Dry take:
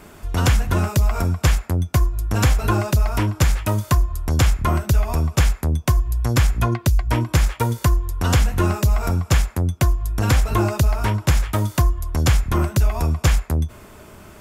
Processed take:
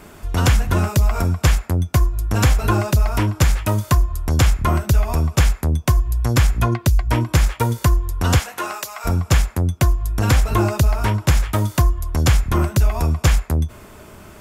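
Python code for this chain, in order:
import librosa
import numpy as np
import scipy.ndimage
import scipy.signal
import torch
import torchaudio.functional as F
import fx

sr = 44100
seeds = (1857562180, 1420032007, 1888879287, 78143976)

y = fx.highpass(x, sr, hz=fx.line((8.38, 490.0), (9.04, 1100.0)), slope=12, at=(8.38, 9.04), fade=0.02)
y = F.gain(torch.from_numpy(y), 1.5).numpy()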